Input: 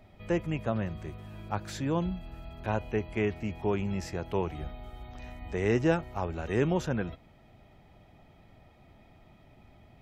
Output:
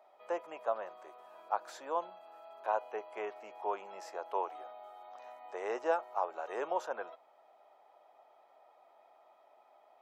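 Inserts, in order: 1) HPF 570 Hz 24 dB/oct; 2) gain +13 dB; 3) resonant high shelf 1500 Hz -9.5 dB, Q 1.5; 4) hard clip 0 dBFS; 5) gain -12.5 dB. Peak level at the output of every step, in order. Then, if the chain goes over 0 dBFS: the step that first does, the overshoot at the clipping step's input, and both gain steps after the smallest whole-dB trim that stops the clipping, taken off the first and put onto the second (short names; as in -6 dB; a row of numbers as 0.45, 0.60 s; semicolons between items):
-17.0, -4.0, -4.5, -4.5, -17.0 dBFS; no overload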